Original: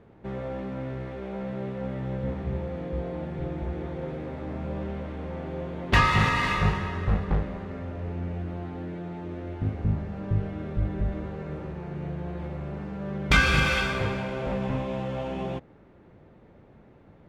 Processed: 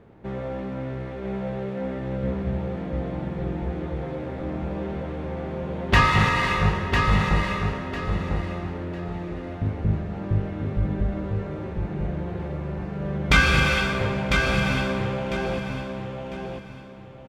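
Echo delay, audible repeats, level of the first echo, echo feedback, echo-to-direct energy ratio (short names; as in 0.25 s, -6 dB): 1 s, 3, -5.0 dB, 27%, -4.5 dB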